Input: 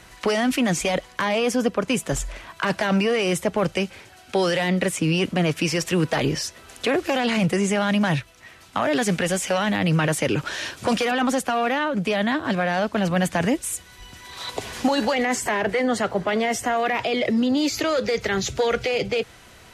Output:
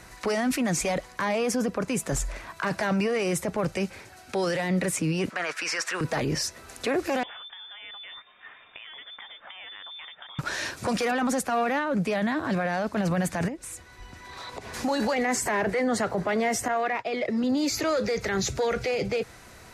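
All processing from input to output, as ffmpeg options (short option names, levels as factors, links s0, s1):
-filter_complex "[0:a]asettb=1/sr,asplit=3[s0][s1][s2];[s0]atrim=end=5.304[s3];[s1]atrim=start=5.3:end=6.01,asetpts=PTS-STARTPTS,afade=t=in:d=0.004:c=qsin,afade=t=out:st=0.706:d=0.004:c=qsin,highpass=770,lowpass=7900,equalizer=f=1500:t=o:w=0.87:g=9.5[s4];[s2]atrim=start=6.006[s5];[s3][s4]acrossfade=d=0.004:c1=hsin:c2=qsin[s6];[s6][s5]acrossfade=d=0.004:c1=qsin:c2=hsin,asettb=1/sr,asplit=3[s7][s8][s9];[s7]atrim=end=7.234[s10];[s8]atrim=start=7.23:end=10.39,asetpts=PTS-STARTPTS,afade=t=in:d=0.004:c=qsin,afade=t=out:st=3.156:d=0.004:c=qsin,acompressor=threshold=0.0141:ratio=6:attack=3.2:release=140:knee=1:detection=peak,lowpass=f=3100:t=q:w=0.5098,lowpass=f=3100:t=q:w=0.6013,lowpass=f=3100:t=q:w=0.9,lowpass=f=3100:t=q:w=2.563,afreqshift=-3700[s11];[s9]atrim=start=10.386[s12];[s10][s11]acrossfade=d=0.004:c1=hsin:c2=qsin[s13];[s13][s12]acrossfade=d=0.004:c1=qsin:c2=hsin,asettb=1/sr,asplit=3[s14][s15][s16];[s14]atrim=end=13.484[s17];[s15]atrim=start=13.48:end=14.74,asetpts=PTS-STARTPTS,afade=t=in:d=0.004:c=qsin,afade=t=out:st=1.256:d=0.004:c=qsin,lowpass=f=2800:p=1,acompressor=threshold=0.02:ratio=4:attack=3.2:release=140:knee=1:detection=peak,bandreject=f=60:t=h:w=6,bandreject=f=120:t=h:w=6,bandreject=f=180:t=h:w=6[s18];[s16]atrim=start=14.736[s19];[s17][s18]acrossfade=d=0.004:c1=hsin:c2=qsin[s20];[s20][s19]acrossfade=d=0.004:c1=qsin:c2=hsin,asettb=1/sr,asplit=3[s21][s22][s23];[s21]atrim=end=16.684[s24];[s22]atrim=start=16.68:end=17.44,asetpts=PTS-STARTPTS,afade=t=in:d=0.004:c=qsin,afade=t=out:st=0.756:d=0.004:c=qsin,agate=range=0.0224:threshold=0.0891:ratio=3:release=100:detection=peak,lowpass=f=3700:p=1,lowshelf=f=360:g=-8[s25];[s23]atrim=start=17.436[s26];[s24][s25]acrossfade=d=0.004:c1=hsin:c2=qsin[s27];[s27][s26]acrossfade=d=0.004:c1=qsin:c2=hsin,alimiter=limit=0.119:level=0:latency=1:release=11,equalizer=f=3100:w=3.4:g=-8.5"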